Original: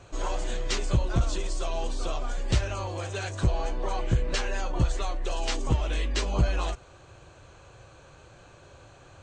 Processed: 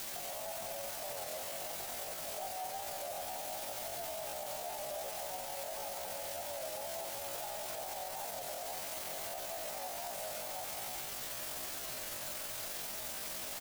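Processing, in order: one-sided wavefolder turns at -24.5 dBFS; delay 498 ms -5 dB; compression 8:1, threshold -33 dBFS, peak gain reduction 15 dB; Chebyshev shaper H 7 -28 dB, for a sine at -22 dBFS; Butterworth band-pass 610 Hz, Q 2.8; tape speed +13%; word length cut 8-bit, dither triangular; plate-style reverb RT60 1.5 s, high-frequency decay 0.5×, pre-delay 80 ms, DRR 3.5 dB; tempo 0.6×; peak limiter -38 dBFS, peak gain reduction 7 dB; warped record 33 1/3 rpm, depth 100 cents; trim +6 dB

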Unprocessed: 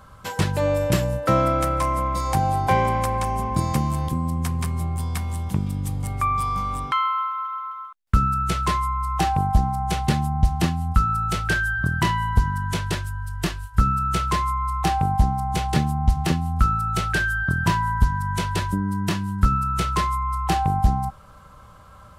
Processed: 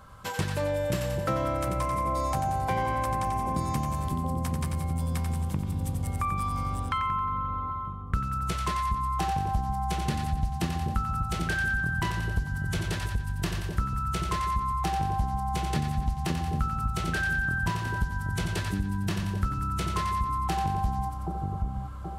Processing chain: two-band feedback delay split 710 Hz, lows 777 ms, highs 90 ms, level -5.5 dB; compression 2.5:1, threshold -24 dBFS, peak gain reduction 9 dB; trim -3 dB

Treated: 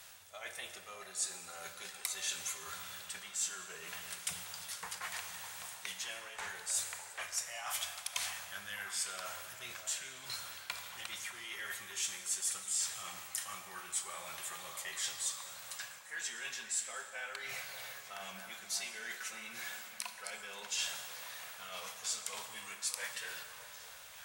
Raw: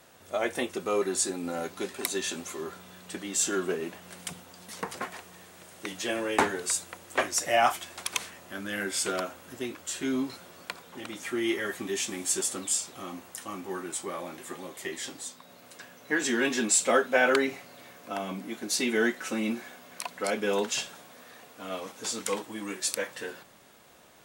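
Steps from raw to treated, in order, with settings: reverse; compression 16:1, threshold -39 dBFS, peak gain reduction 22.5 dB; reverse; amplifier tone stack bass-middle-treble 10-0-10; crackle 140 per s -59 dBFS; peaking EQ 280 Hz -9 dB 0.32 oct; repeats whose band climbs or falls 603 ms, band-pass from 740 Hz, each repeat 0.7 oct, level -7 dB; on a send at -6.5 dB: reverberation RT60 3.0 s, pre-delay 18 ms; on the sum: trim +7 dB

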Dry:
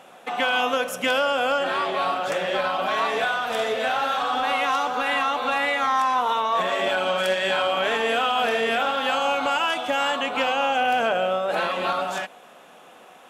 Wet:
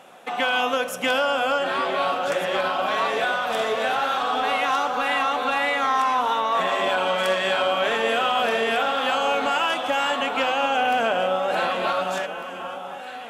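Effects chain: echo whose repeats swap between lows and highs 750 ms, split 1.4 kHz, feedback 64%, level -8.5 dB

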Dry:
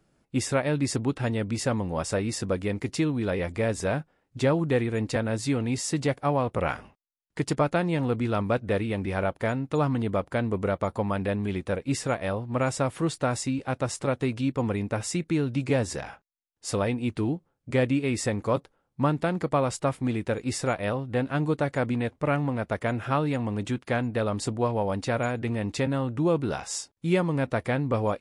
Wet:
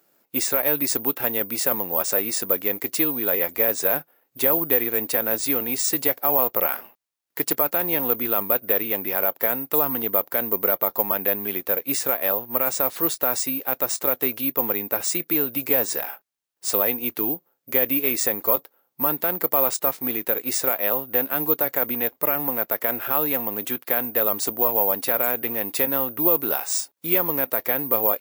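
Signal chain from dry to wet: high-pass 380 Hz 12 dB/octave; peak limiter -17.5 dBFS, peak gain reduction 7 dB; careless resampling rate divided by 3×, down none, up zero stuff; trim +4 dB

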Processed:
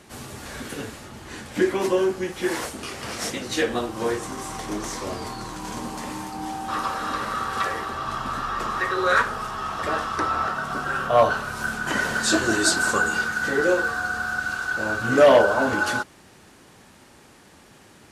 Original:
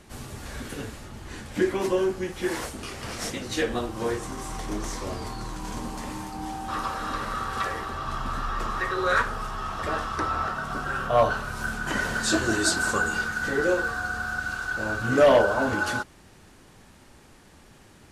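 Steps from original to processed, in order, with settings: high-pass 160 Hz 6 dB/octave; trim +3.5 dB

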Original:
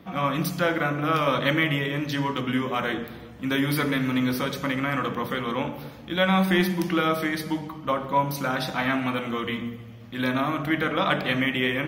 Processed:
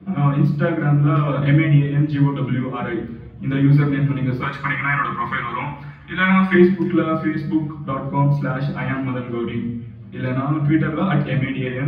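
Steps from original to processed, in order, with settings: tilt EQ -4 dB/octave; reverb removal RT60 0.82 s; 4.42–6.54 s: graphic EQ 125/250/500/1000/2000/8000 Hz -5/-7/-10/+9/+11/+10 dB; feedback echo behind a high-pass 336 ms, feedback 58%, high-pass 2.1 kHz, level -22.5 dB; reverberation RT60 0.60 s, pre-delay 3 ms, DRR -5.5 dB; trim -14.5 dB

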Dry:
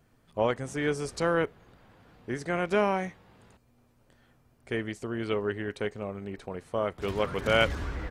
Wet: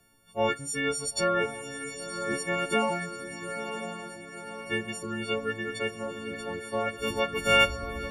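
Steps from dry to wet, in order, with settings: partials quantised in pitch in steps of 4 st; reverb removal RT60 0.62 s; echo that smears into a reverb 1003 ms, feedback 55%, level -8 dB; on a send at -13 dB: reverberation, pre-delay 5 ms; on the sum: trim -1 dB

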